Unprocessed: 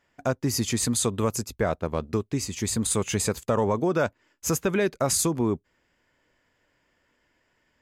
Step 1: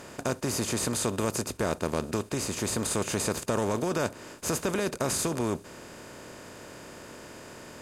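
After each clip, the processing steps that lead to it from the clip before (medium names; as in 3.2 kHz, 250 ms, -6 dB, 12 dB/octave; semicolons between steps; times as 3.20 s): spectral levelling over time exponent 0.4; trim -9 dB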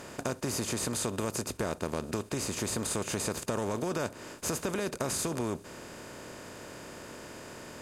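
compression 2.5:1, threshold -30 dBFS, peak gain reduction 5.5 dB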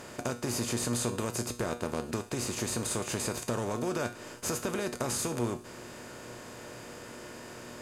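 feedback comb 120 Hz, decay 0.41 s, harmonics all, mix 70%; trim +7.5 dB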